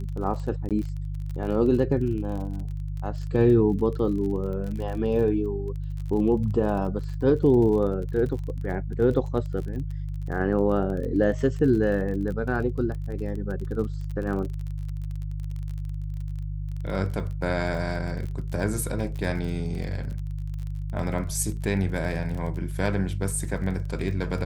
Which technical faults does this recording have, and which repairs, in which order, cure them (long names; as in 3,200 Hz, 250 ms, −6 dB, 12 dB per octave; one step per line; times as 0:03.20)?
surface crackle 31 per second −33 dBFS
mains hum 50 Hz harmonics 3 −31 dBFS
0:00.69–0:00.71: drop-out 17 ms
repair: click removal
hum removal 50 Hz, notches 3
repair the gap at 0:00.69, 17 ms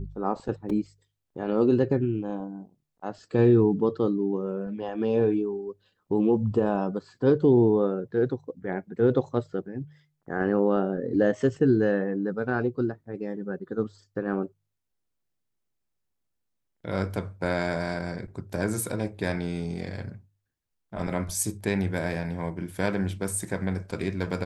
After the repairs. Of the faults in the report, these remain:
none of them is left